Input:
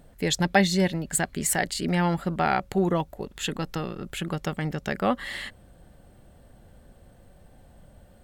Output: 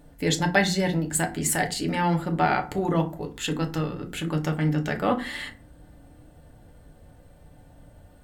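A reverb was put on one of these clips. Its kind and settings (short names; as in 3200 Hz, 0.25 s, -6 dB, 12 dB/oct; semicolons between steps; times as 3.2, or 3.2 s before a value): FDN reverb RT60 0.35 s, low-frequency decay 1.55×, high-frequency decay 0.6×, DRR 2.5 dB; gain -1 dB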